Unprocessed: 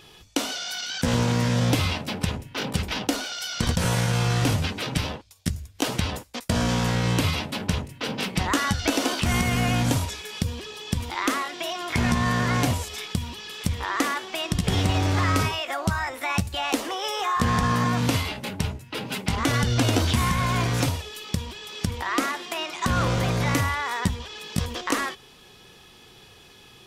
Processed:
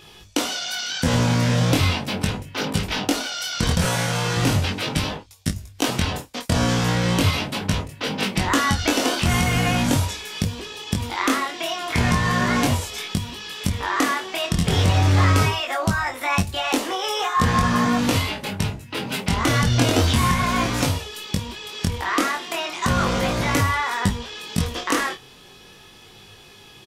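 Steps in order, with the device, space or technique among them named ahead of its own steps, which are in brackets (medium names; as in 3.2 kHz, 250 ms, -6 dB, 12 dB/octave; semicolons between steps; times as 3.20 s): double-tracked vocal (doubling 30 ms -13 dB; chorus 0.38 Hz, delay 19.5 ms, depth 4.4 ms); 3.85–4.37 s: high-pass 220 Hz 6 dB/octave; trim +6.5 dB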